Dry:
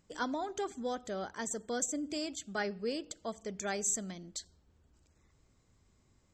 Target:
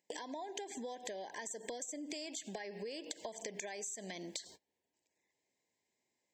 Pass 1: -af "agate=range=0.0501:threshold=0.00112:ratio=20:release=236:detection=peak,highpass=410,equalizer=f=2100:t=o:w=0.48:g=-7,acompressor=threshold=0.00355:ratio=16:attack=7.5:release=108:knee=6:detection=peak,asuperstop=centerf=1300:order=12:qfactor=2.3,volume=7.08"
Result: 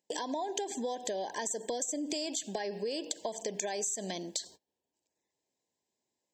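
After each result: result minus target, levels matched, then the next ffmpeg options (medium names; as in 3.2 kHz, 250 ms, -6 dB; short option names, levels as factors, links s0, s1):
compression: peak gain reduction -9 dB; 2 kHz band -5.0 dB
-af "agate=range=0.0501:threshold=0.00112:ratio=20:release=236:detection=peak,highpass=410,equalizer=f=2100:t=o:w=0.48:g=-7,acompressor=threshold=0.00119:ratio=16:attack=7.5:release=108:knee=6:detection=peak,asuperstop=centerf=1300:order=12:qfactor=2.3,volume=7.08"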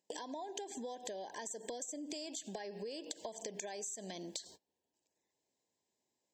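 2 kHz band -4.5 dB
-af "agate=range=0.0501:threshold=0.00112:ratio=20:release=236:detection=peak,highpass=410,equalizer=f=2100:t=o:w=0.48:g=4,acompressor=threshold=0.00119:ratio=16:attack=7.5:release=108:knee=6:detection=peak,asuperstop=centerf=1300:order=12:qfactor=2.3,volume=7.08"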